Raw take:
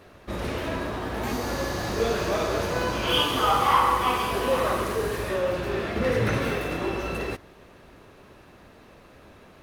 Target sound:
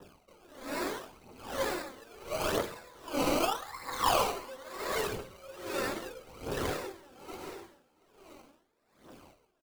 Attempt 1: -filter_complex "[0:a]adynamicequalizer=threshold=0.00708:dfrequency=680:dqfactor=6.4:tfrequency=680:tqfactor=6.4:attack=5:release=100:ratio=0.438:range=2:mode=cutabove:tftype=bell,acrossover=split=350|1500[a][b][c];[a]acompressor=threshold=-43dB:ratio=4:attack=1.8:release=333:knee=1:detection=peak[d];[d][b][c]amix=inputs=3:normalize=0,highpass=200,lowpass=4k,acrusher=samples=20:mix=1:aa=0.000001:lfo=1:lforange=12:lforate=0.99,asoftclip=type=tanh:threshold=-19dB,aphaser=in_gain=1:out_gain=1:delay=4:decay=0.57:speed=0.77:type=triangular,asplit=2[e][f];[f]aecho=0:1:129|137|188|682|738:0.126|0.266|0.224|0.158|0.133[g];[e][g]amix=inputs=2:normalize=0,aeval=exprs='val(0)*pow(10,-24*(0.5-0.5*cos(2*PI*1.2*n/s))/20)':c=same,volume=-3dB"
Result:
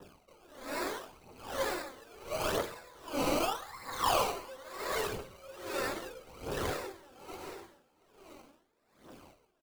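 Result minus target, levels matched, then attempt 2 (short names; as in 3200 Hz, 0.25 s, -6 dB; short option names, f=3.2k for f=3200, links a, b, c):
soft clip: distortion +14 dB; compressor: peak gain reduction +8 dB
-filter_complex "[0:a]adynamicequalizer=threshold=0.00708:dfrequency=680:dqfactor=6.4:tfrequency=680:tqfactor=6.4:attack=5:release=100:ratio=0.438:range=2:mode=cutabove:tftype=bell,acrossover=split=350|1500[a][b][c];[a]acompressor=threshold=-32.5dB:ratio=4:attack=1.8:release=333:knee=1:detection=peak[d];[d][b][c]amix=inputs=3:normalize=0,highpass=200,lowpass=4k,acrusher=samples=20:mix=1:aa=0.000001:lfo=1:lforange=12:lforate=0.99,asoftclip=type=tanh:threshold=-9dB,aphaser=in_gain=1:out_gain=1:delay=4:decay=0.57:speed=0.77:type=triangular,asplit=2[e][f];[f]aecho=0:1:129|137|188|682|738:0.126|0.266|0.224|0.158|0.133[g];[e][g]amix=inputs=2:normalize=0,aeval=exprs='val(0)*pow(10,-24*(0.5-0.5*cos(2*PI*1.2*n/s))/20)':c=same,volume=-3dB"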